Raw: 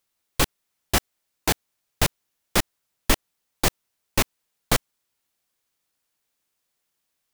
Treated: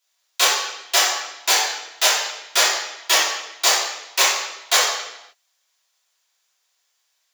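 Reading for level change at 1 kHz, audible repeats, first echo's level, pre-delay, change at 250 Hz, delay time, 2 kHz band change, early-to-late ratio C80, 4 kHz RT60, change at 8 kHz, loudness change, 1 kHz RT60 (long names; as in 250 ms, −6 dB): +8.0 dB, no echo audible, no echo audible, 3 ms, −14.0 dB, no echo audible, +9.0 dB, 3.5 dB, 0.85 s, +10.5 dB, +7.5 dB, 0.85 s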